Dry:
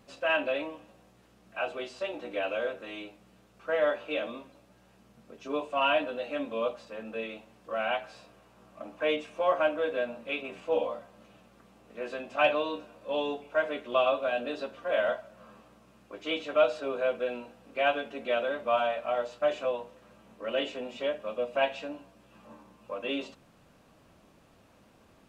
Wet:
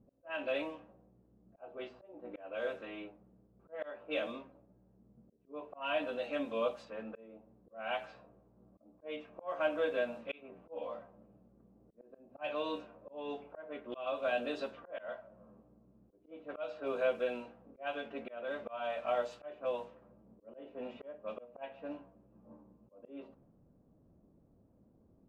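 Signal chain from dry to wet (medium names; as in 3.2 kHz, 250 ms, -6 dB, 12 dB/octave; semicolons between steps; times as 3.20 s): slow attack 357 ms; level-controlled noise filter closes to 320 Hz, open at -30.5 dBFS; trim -3 dB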